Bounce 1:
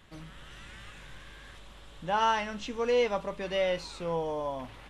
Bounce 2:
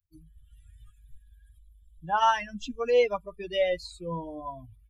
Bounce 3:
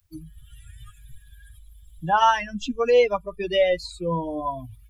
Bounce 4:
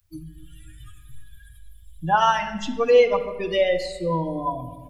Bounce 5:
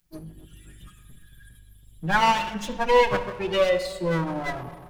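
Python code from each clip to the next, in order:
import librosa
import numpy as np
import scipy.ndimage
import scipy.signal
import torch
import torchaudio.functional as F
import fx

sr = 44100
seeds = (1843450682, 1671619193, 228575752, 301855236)

y1 = fx.bin_expand(x, sr, power=3.0)
y1 = y1 * librosa.db_to_amplitude(6.0)
y2 = fx.band_squash(y1, sr, depth_pct=40)
y2 = y2 * librosa.db_to_amplitude(6.0)
y3 = fx.room_shoebox(y2, sr, seeds[0], volume_m3=1000.0, walls='mixed', distance_m=0.7)
y4 = fx.lower_of_two(y3, sr, delay_ms=5.5)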